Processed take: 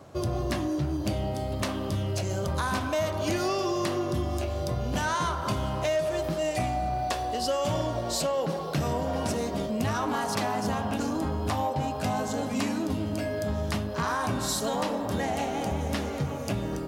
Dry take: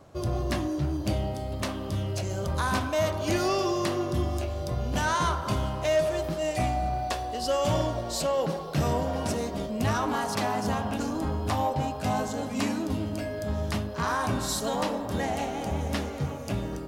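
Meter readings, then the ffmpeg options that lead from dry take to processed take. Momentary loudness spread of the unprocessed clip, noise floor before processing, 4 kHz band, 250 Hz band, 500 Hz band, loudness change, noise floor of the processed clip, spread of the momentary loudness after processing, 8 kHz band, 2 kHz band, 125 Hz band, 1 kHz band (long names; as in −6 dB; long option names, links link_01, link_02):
6 LU, −35 dBFS, 0.0 dB, +0.5 dB, −0.5 dB, −0.5 dB, −33 dBFS, 3 LU, +0.5 dB, −0.5 dB, −1.0 dB, −0.5 dB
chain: -af "highpass=67,acompressor=threshold=-30dB:ratio=3,volume=4dB"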